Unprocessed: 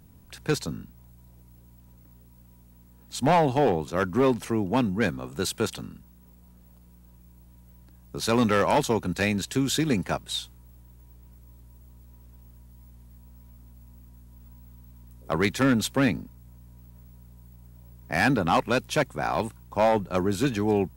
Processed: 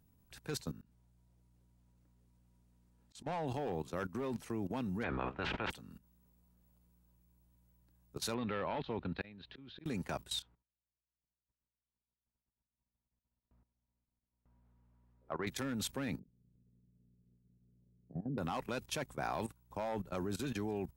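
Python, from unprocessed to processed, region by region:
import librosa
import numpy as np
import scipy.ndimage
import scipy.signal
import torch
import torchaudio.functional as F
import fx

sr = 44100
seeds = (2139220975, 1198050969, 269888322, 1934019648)

y = fx.chain(x, sr, fx.lowpass(hz=9200.0, slope=12),
    fx.auto_swell(attack_ms=145.0), at=(0.81, 3.47))
y = fx.spec_clip(y, sr, under_db=18, at=(5.02, 5.7), fade=0.02)
y = fx.lowpass(y, sr, hz=2600.0, slope=24, at=(5.02, 5.7), fade=0.02)
y = fx.sustainer(y, sr, db_per_s=36.0, at=(5.02, 5.7), fade=0.02)
y = fx.chain(y, sr, fx.steep_lowpass(hz=4100.0, slope=48),
    fx.auto_swell(attack_ms=483.0), at=(8.34, 9.86))
y = fx.chain(y, sr, fx.lowpass(hz=1600.0, slope=12),
    fx.gate_hold(open_db=-43.0, close_db=-48.0, hold_ms=71.0, range_db=-21, attack_ms=1.4, release_ms=100.0),
    fx.low_shelf(hz=320.0, db=-10.5), at=(10.42, 15.47))
y = fx.chain(y, sr, fx.peak_eq(hz=160.0, db=12.5, octaves=0.93),
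    fx.level_steps(step_db=11),
    fx.ladder_lowpass(hz=500.0, resonance_pct=50), at=(16.19, 18.38))
y = fx.high_shelf(y, sr, hz=8300.0, db=2.0)
y = fx.level_steps(y, sr, step_db=16)
y = F.gain(torch.from_numpy(y), -5.5).numpy()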